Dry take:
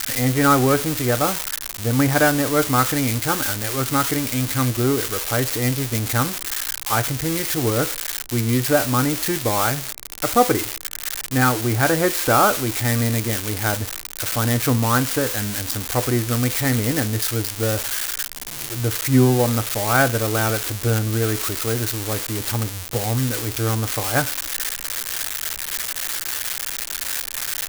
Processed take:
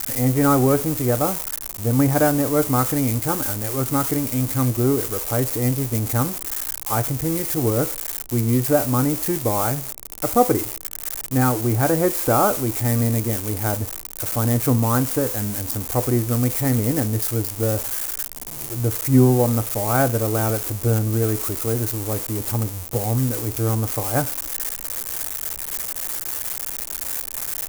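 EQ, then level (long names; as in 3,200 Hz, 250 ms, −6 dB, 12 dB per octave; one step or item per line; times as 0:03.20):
parametric band 1,600 Hz −6 dB 0.86 octaves
parametric band 3,600 Hz −11 dB 1.7 octaves
+1.0 dB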